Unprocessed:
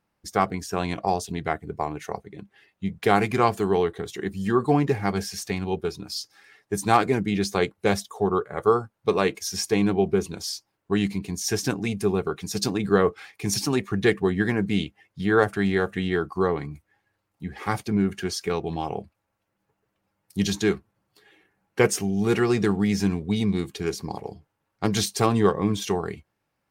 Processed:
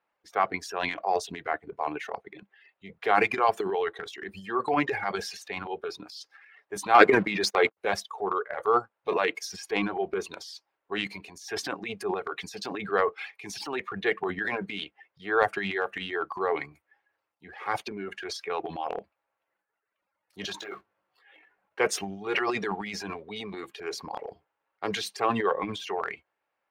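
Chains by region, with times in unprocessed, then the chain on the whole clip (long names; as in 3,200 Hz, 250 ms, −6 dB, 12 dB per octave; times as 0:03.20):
0:06.94–0:07.77: notch filter 3,000 Hz, Q 5.4 + downward expander −30 dBFS + leveller curve on the samples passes 2
0:20.58–0:21.80: one scale factor per block 5 bits + downward compressor 12 to 1, threshold −28 dBFS + double-tracking delay 20 ms −2 dB
whole clip: three-way crossover with the lows and the highs turned down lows −23 dB, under 410 Hz, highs −19 dB, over 3,500 Hz; reverb reduction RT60 1.3 s; transient designer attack −3 dB, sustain +11 dB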